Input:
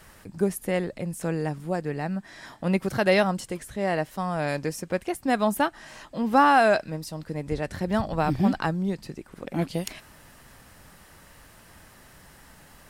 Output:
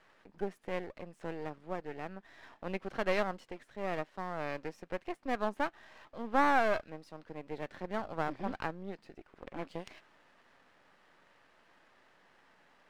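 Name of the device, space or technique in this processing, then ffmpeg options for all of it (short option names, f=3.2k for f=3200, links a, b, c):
crystal radio: -af "highpass=320,lowpass=2.9k,aeval=exprs='if(lt(val(0),0),0.251*val(0),val(0))':c=same,volume=-6.5dB"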